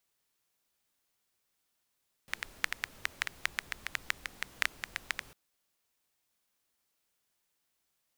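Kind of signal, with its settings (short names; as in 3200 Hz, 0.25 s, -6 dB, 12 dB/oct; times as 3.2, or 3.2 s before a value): rain from filtered ticks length 3.05 s, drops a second 7.2, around 1900 Hz, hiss -15 dB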